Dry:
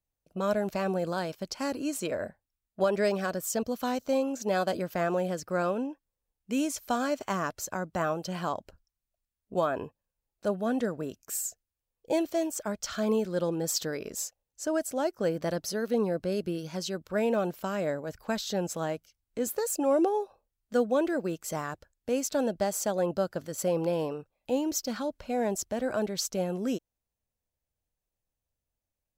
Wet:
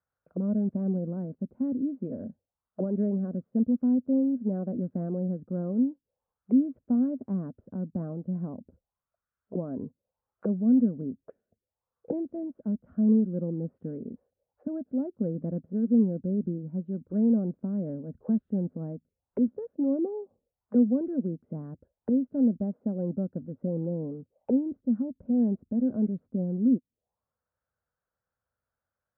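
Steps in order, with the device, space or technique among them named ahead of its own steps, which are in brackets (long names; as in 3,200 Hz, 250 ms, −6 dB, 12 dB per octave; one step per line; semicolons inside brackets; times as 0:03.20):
envelope filter bass rig (envelope-controlled low-pass 250–1,400 Hz down, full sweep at −34.5 dBFS; loudspeaker in its box 76–2,300 Hz, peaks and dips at 310 Hz −6 dB, 520 Hz +4 dB, 1,500 Hz +4 dB)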